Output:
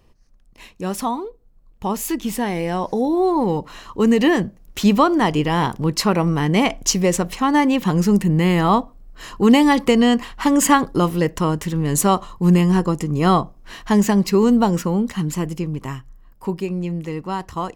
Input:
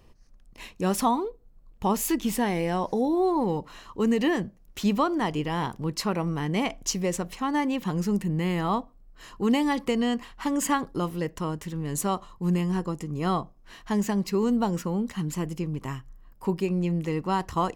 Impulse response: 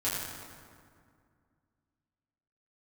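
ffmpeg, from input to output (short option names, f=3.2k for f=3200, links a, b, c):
-af "dynaudnorm=f=600:g=11:m=13dB"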